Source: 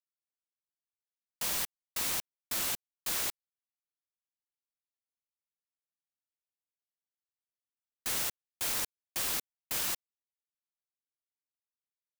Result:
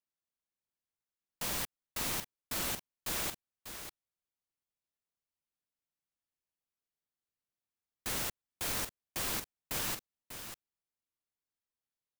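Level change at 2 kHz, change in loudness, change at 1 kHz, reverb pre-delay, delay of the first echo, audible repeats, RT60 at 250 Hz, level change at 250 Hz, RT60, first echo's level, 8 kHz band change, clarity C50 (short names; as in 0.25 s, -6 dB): -1.0 dB, -4.0 dB, +0.5 dB, none, 0.594 s, 1, none, +4.0 dB, none, -9.5 dB, -3.5 dB, none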